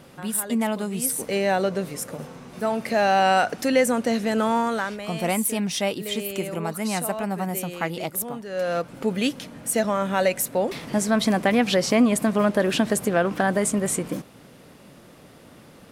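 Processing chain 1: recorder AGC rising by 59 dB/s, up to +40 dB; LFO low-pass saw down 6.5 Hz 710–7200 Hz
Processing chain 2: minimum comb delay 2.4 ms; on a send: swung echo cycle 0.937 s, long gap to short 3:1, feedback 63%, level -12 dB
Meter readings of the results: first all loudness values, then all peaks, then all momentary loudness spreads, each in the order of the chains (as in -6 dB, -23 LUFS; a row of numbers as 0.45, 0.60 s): -21.5, -26.5 LUFS; -2.5, -10.0 dBFS; 6, 10 LU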